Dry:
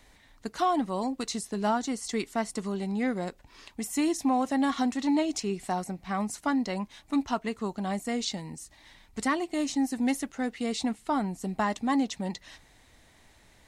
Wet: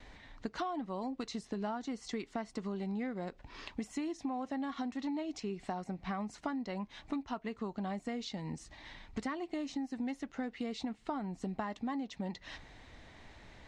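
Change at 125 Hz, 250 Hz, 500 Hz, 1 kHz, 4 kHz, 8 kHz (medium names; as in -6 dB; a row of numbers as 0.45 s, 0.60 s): -6.0 dB, -9.0 dB, -9.0 dB, -10.5 dB, -10.0 dB, -16.5 dB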